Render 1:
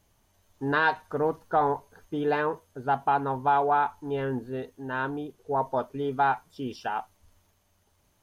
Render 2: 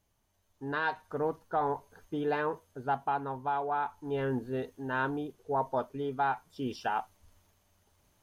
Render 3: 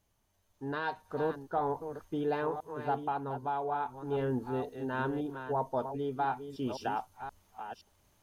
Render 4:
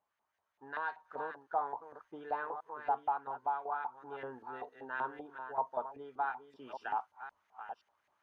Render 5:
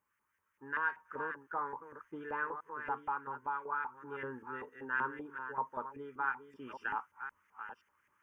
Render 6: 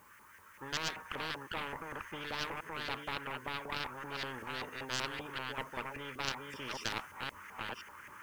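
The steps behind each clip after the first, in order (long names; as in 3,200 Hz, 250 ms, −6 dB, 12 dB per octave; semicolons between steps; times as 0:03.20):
speech leveller within 5 dB 0.5 s; level −5 dB
delay that plays each chunk backwards 521 ms, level −9 dB; dynamic equaliser 1,800 Hz, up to −6 dB, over −46 dBFS, Q 0.75
auto-filter band-pass saw up 5.2 Hz 800–2,000 Hz; level +2.5 dB
phaser with its sweep stopped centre 1,700 Hz, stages 4; level +6.5 dB
stylus tracing distortion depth 0.16 ms; every bin compressed towards the loudest bin 4 to 1; level +4 dB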